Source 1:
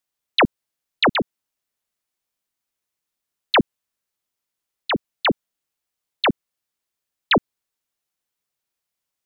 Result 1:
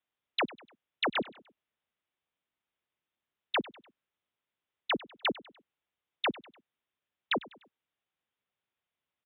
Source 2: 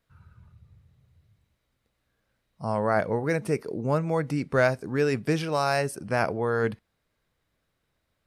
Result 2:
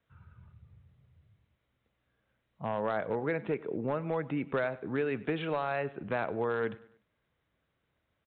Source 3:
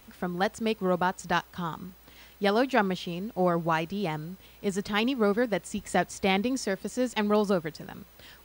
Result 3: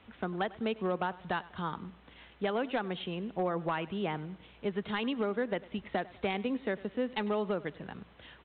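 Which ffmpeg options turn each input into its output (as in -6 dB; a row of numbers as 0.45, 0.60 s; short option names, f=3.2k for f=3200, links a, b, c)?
-filter_complex "[0:a]acrossover=split=210|3000[a][b][c];[a]acompressor=threshold=-43dB:ratio=2.5[d];[d][b][c]amix=inputs=3:normalize=0,highpass=50,acompressor=threshold=-25dB:ratio=12,aresample=8000,volume=21.5dB,asoftclip=hard,volume=-21.5dB,aresample=44100,aecho=1:1:99|198|297:0.1|0.043|0.0185,volume=-1.5dB"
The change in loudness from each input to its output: -12.5, -7.0, -6.5 LU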